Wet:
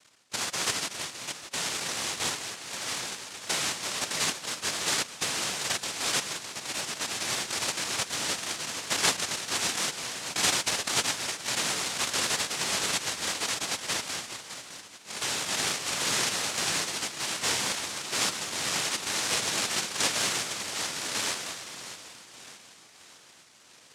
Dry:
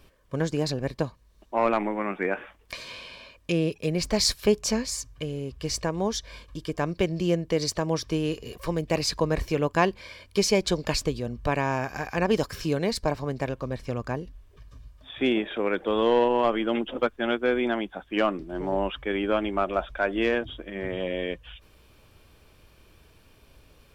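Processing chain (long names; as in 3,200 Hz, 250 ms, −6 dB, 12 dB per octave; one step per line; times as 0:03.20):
each half-wave held at its own peak
high-pass filter 510 Hz 24 dB per octave
high-shelf EQ 4,500 Hz +5.5 dB
brickwall limiter −15 dBFS, peak gain reduction 14.5 dB
sample-and-hold tremolo
echo with a time of its own for lows and highs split 1,500 Hz, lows 202 ms, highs 610 ms, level −7.5 dB
cochlear-implant simulation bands 1
level +4 dB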